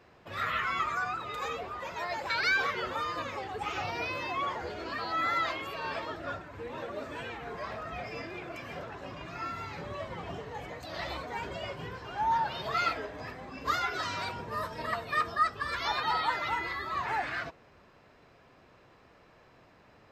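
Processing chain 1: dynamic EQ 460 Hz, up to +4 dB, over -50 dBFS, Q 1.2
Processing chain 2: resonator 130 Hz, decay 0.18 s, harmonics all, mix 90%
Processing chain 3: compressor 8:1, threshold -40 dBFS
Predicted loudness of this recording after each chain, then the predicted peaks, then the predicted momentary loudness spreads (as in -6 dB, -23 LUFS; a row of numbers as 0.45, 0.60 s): -33.0, -41.0, -43.0 LUFS; -15.5, -22.0, -28.5 dBFS; 10, 13, 18 LU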